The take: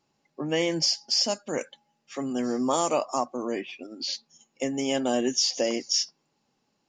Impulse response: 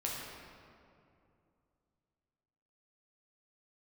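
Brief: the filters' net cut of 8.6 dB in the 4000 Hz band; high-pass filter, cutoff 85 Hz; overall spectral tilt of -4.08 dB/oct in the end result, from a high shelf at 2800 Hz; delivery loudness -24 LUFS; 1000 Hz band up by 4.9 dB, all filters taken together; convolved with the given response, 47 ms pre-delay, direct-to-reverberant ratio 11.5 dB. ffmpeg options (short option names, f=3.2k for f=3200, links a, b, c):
-filter_complex "[0:a]highpass=85,equalizer=f=1k:t=o:g=7.5,highshelf=f=2.8k:g=-6.5,equalizer=f=4k:t=o:g=-6,asplit=2[a][b];[1:a]atrim=start_sample=2205,adelay=47[c];[b][c]afir=irnorm=-1:irlink=0,volume=-15dB[d];[a][d]amix=inputs=2:normalize=0,volume=3.5dB"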